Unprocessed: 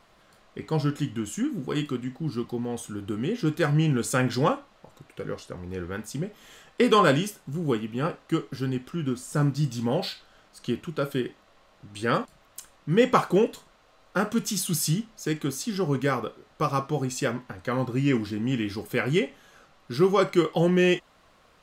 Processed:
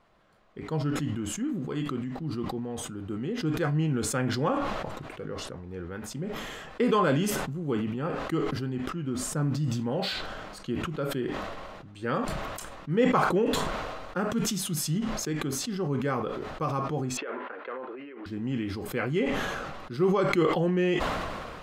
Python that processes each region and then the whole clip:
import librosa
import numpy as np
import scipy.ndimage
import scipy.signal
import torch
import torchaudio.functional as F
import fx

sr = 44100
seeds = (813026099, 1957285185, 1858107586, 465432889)

y = fx.chain(x, sr, fx.over_compress(threshold_db=-28.0, ratio=-0.5),
    fx.overload_stage(gain_db=24.0),
    fx.cabinet(low_hz=370.0, low_slope=24, high_hz=2900.0, hz=(440.0, 750.0, 1400.0), db=(3, -4, 3)), at=(17.17, 18.26))
y = fx.high_shelf(y, sr, hz=3300.0, db=-11.5)
y = fx.sustainer(y, sr, db_per_s=27.0)
y = F.gain(torch.from_numpy(y), -4.5).numpy()